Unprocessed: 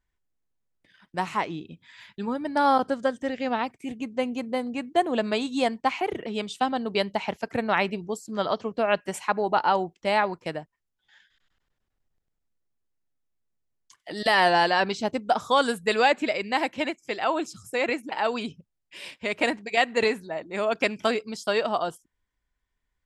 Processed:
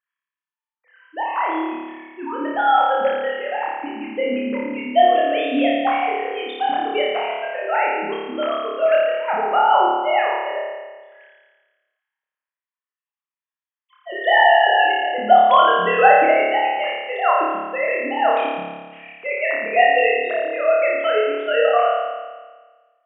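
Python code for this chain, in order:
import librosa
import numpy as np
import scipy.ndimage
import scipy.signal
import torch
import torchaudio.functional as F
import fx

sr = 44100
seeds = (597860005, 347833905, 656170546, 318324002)

y = fx.sine_speech(x, sr)
y = fx.dynamic_eq(y, sr, hz=360.0, q=1.1, threshold_db=-38.0, ratio=4.0, max_db=-6)
y = fx.room_flutter(y, sr, wall_m=4.8, rt60_s=1.4)
y = F.gain(torch.from_numpy(y), 4.0).numpy()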